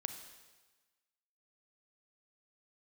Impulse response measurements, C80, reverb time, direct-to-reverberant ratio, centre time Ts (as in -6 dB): 9.5 dB, 1.3 s, 7.0 dB, 21 ms